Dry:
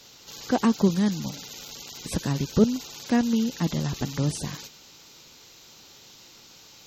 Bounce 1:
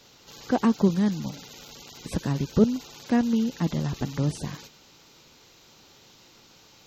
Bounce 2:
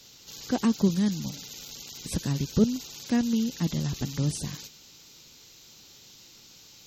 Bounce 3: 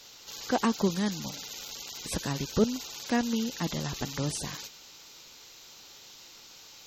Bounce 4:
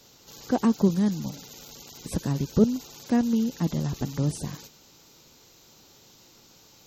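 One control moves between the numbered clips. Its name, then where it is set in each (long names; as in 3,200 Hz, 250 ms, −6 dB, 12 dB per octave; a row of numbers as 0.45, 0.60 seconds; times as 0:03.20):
parametric band, centre frequency: 11,000, 900, 150, 2,900 Hertz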